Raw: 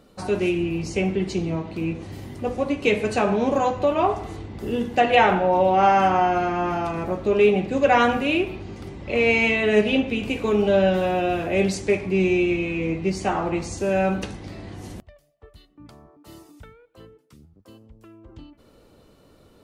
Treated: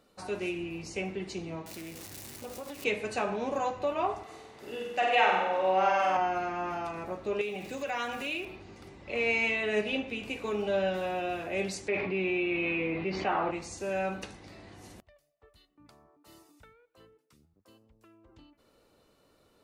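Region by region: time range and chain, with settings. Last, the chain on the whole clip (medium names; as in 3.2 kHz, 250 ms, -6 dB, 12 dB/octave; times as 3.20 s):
1.66–2.84 s: zero-crossing glitches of -23 dBFS + compression, threshold -26 dBFS + loudspeaker Doppler distortion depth 0.37 ms
4.23–6.17 s: high-pass 450 Hz 6 dB/octave + treble shelf 7.8 kHz -3.5 dB + flutter echo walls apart 8.2 m, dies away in 1 s
7.41–8.45 s: small samples zeroed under -44.5 dBFS + treble shelf 2.9 kHz +9.5 dB + compression 4:1, threshold -22 dBFS
11.88–13.51 s: low-pass 3.6 kHz 24 dB/octave + bass shelf 130 Hz -9.5 dB + level flattener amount 70%
whole clip: bass shelf 380 Hz -9.5 dB; band-stop 3.2 kHz, Q 19; trim -7 dB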